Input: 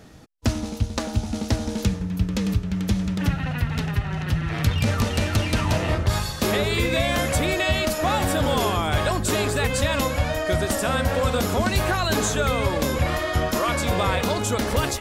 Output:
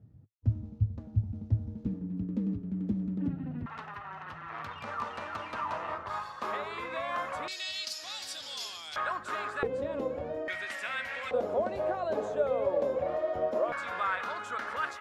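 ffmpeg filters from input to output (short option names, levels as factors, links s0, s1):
-af "asetnsamples=n=441:p=0,asendcmd='1.86 bandpass f 260;3.66 bandpass f 1100;7.48 bandpass f 4800;8.96 bandpass f 1300;9.63 bandpass f 420;10.48 bandpass f 2100;11.31 bandpass f 570;13.72 bandpass f 1400',bandpass=f=110:t=q:w=3.4:csg=0"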